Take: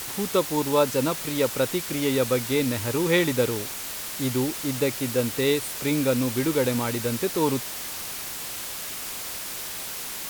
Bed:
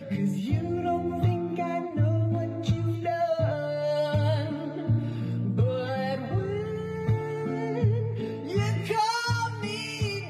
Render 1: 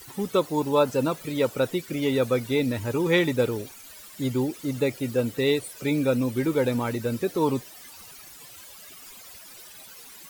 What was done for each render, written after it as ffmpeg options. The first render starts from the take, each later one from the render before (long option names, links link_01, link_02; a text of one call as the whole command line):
ffmpeg -i in.wav -af "afftdn=noise_reduction=16:noise_floor=-34" out.wav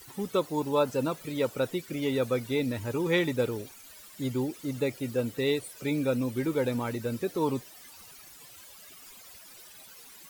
ffmpeg -i in.wav -af "volume=-4.5dB" out.wav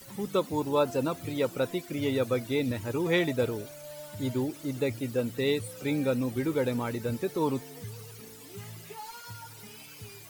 ffmpeg -i in.wav -i bed.wav -filter_complex "[1:a]volume=-18dB[link_01];[0:a][link_01]amix=inputs=2:normalize=0" out.wav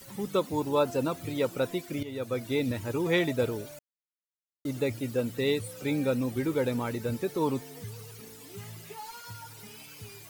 ffmpeg -i in.wav -filter_complex "[0:a]asplit=4[link_01][link_02][link_03][link_04];[link_01]atrim=end=2.03,asetpts=PTS-STARTPTS,afade=type=out:start_time=2.026:duration=0.004:curve=hsin:silence=0.177828[link_05];[link_02]atrim=start=2.03:end=3.79,asetpts=PTS-STARTPTS,afade=type=in:duration=0.5:silence=0.177828,afade=type=out:start_time=1.756:duration=0.004:curve=hsin[link_06];[link_03]atrim=start=3.79:end=4.65,asetpts=PTS-STARTPTS,volume=0[link_07];[link_04]atrim=start=4.65,asetpts=PTS-STARTPTS,afade=type=in:duration=0.004:curve=hsin[link_08];[link_05][link_06][link_07][link_08]concat=n=4:v=0:a=1" out.wav